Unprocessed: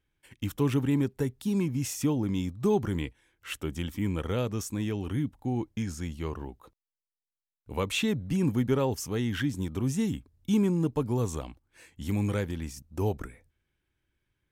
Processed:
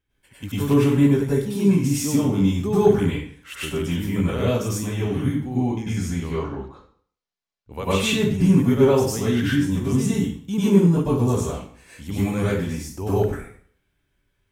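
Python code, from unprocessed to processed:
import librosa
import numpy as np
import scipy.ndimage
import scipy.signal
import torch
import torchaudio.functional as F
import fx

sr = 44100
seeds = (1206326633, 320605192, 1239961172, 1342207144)

y = fx.lowpass(x, sr, hz=6200.0, slope=24, at=(6.2, 7.72))
y = fx.rev_plate(y, sr, seeds[0], rt60_s=0.52, hf_ratio=0.9, predelay_ms=85, drr_db=-9.5)
y = F.gain(torch.from_numpy(y), -1.5).numpy()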